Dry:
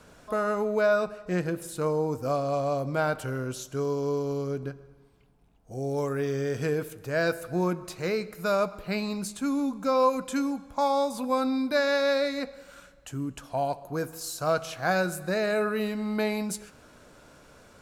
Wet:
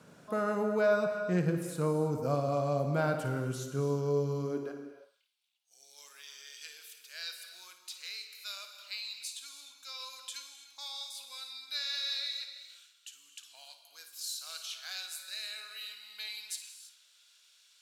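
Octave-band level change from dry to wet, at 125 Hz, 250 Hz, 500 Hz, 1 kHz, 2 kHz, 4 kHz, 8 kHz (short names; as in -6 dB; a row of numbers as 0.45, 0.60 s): -2.5, -8.5, -8.0, -11.0, -9.0, +2.0, -3.0 dB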